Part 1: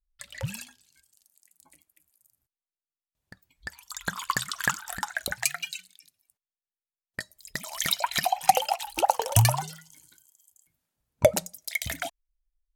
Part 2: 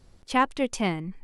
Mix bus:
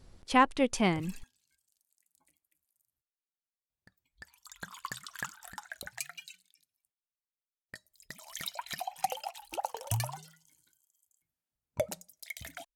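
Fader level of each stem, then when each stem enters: -12.5, -1.0 dB; 0.55, 0.00 s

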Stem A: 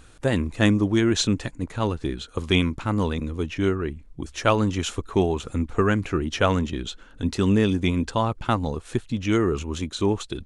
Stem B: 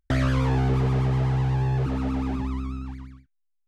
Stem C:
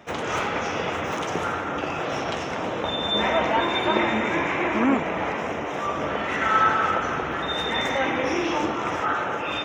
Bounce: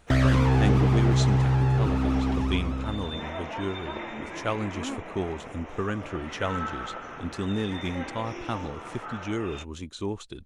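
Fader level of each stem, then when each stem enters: -9.0, +1.5, -14.0 dB; 0.00, 0.00, 0.00 s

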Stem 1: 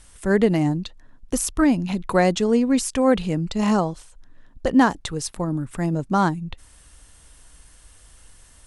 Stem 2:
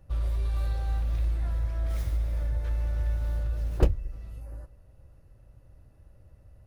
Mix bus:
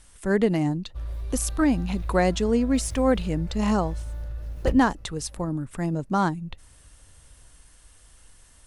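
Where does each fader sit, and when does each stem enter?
-3.5, -4.5 dB; 0.00, 0.85 s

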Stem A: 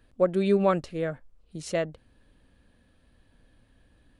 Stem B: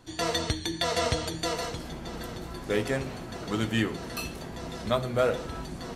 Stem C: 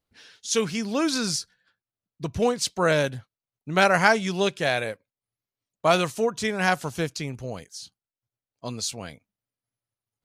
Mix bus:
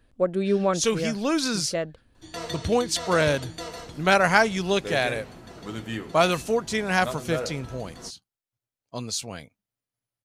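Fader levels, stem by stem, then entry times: -0.5, -6.0, 0.0 dB; 0.00, 2.15, 0.30 s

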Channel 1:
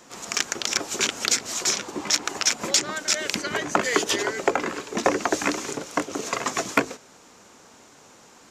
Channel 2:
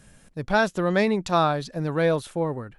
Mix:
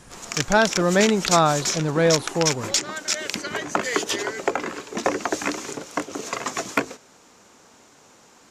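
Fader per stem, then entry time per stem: -1.5, +3.0 dB; 0.00, 0.00 s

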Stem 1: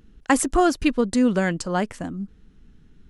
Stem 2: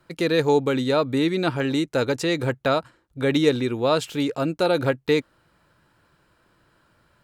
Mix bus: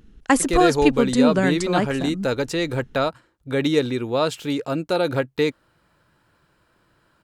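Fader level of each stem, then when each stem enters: +1.5, -0.5 dB; 0.00, 0.30 s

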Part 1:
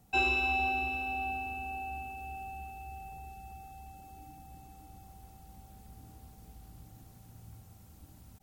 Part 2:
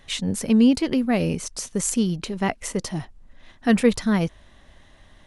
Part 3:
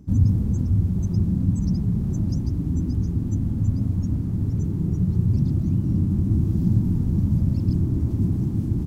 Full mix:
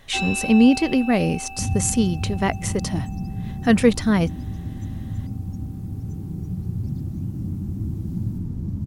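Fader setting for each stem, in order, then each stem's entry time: +1.0, +2.0, -7.0 dB; 0.00, 0.00, 1.50 s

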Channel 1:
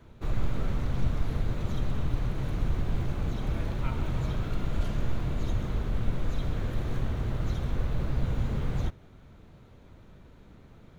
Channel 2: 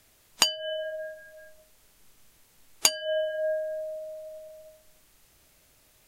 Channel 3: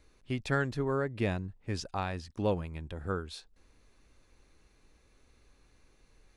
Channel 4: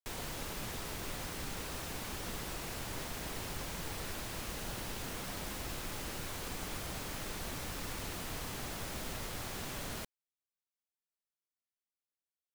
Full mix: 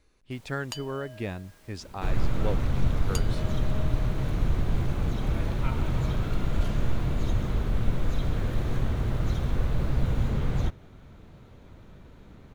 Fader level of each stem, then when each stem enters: +3.0, -16.0, -2.5, -16.5 dB; 1.80, 0.30, 0.00, 0.25 s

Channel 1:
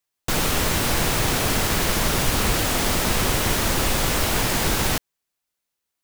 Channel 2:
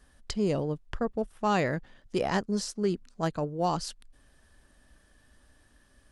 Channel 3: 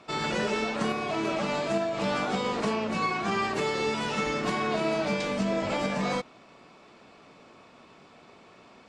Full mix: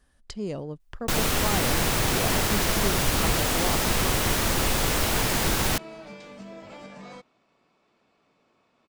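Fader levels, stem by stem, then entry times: -2.5, -4.5, -14.5 dB; 0.80, 0.00, 1.00 s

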